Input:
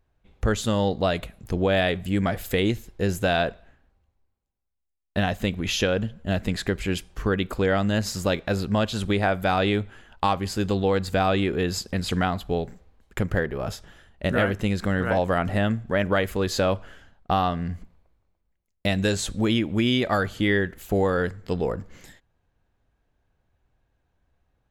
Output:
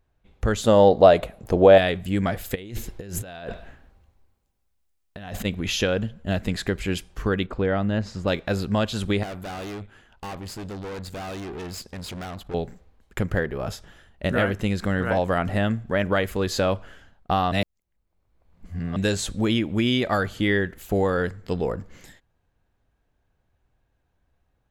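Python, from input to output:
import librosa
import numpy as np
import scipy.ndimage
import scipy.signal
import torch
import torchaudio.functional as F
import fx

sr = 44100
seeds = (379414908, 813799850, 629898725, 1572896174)

y = fx.peak_eq(x, sr, hz=600.0, db=12.0, octaves=1.7, at=(0.64, 1.78))
y = fx.over_compress(y, sr, threshold_db=-35.0, ratio=-1.0, at=(2.54, 5.44), fade=0.02)
y = fx.spacing_loss(y, sr, db_at_10k=23, at=(7.46, 8.28))
y = fx.tube_stage(y, sr, drive_db=32.0, bias=0.75, at=(9.23, 12.54))
y = fx.edit(y, sr, fx.reverse_span(start_s=17.52, length_s=1.44), tone=tone)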